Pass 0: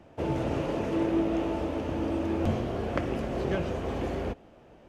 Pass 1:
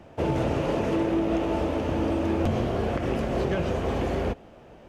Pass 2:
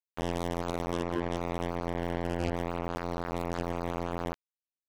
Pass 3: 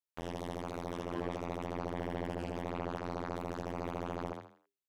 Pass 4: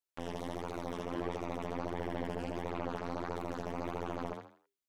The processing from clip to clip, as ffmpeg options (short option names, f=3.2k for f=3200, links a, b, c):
-af "equalizer=f=300:t=o:w=0.41:g=-2.5,alimiter=limit=-21.5dB:level=0:latency=1:release=77,volume=5.5dB"
-af "afftfilt=real='hypot(re,im)*cos(PI*b)':imag='0':win_size=2048:overlap=0.75,acrusher=bits=3:mix=0:aa=0.5,volume=-3.5dB"
-filter_complex "[0:a]alimiter=limit=-22dB:level=0:latency=1:release=168,asplit=2[a][b];[b]asplit=4[c][d][e][f];[c]adelay=81,afreqshift=100,volume=-5dB[g];[d]adelay=162,afreqshift=200,volume=-14.9dB[h];[e]adelay=243,afreqshift=300,volume=-24.8dB[i];[f]adelay=324,afreqshift=400,volume=-34.7dB[j];[g][h][i][j]amix=inputs=4:normalize=0[k];[a][k]amix=inputs=2:normalize=0,volume=-3.5dB"
-af "flanger=delay=2:depth=2.9:regen=55:speed=1.5:shape=triangular,volume=4.5dB"